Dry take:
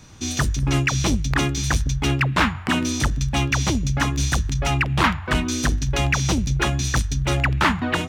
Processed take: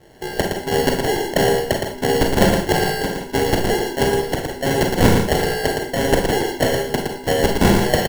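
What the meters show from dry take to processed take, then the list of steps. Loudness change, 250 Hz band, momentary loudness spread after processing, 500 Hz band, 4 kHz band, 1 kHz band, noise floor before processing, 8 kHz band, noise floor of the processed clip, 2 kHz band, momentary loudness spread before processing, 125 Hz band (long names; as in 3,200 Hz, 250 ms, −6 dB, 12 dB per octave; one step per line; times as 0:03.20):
+2.5 dB, +3.5 dB, 7 LU, +14.0 dB, +2.0 dB, +3.5 dB, −33 dBFS, −1.5 dB, −33 dBFS, 0.0 dB, 3 LU, −2.5 dB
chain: single-sideband voice off tune +120 Hz 260–2,800 Hz
decimation without filtering 36×
on a send: single-tap delay 115 ms −5 dB
on the sum: four-comb reverb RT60 0.32 s, combs from 32 ms, DRR 3 dB
level +5 dB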